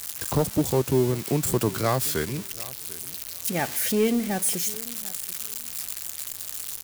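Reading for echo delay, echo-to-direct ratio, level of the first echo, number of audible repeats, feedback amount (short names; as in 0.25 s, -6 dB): 0.742 s, -20.0 dB, -20.0 dB, 2, 20%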